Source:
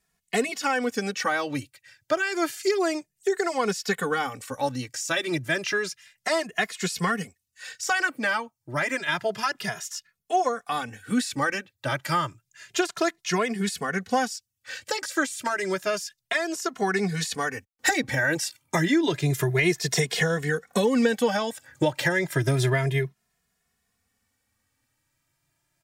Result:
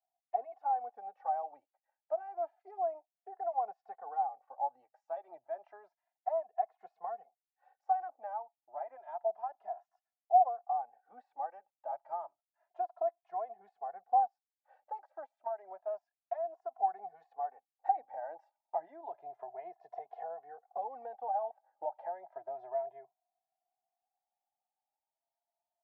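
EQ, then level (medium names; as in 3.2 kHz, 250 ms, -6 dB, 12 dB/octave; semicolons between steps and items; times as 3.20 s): Butterworth band-pass 750 Hz, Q 4.7; 0.0 dB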